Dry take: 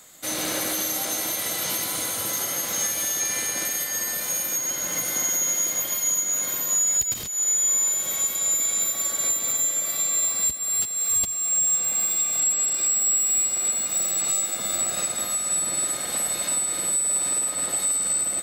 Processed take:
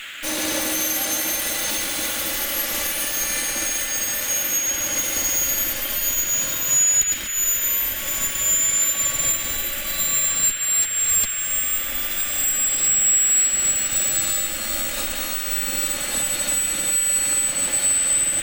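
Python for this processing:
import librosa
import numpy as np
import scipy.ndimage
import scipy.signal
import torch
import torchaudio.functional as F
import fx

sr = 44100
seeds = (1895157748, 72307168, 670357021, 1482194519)

y = fx.lower_of_two(x, sr, delay_ms=3.5)
y = fx.dmg_noise_band(y, sr, seeds[0], low_hz=1400.0, high_hz=3400.0, level_db=-40.0)
y = F.gain(torch.from_numpy(y), 4.5).numpy()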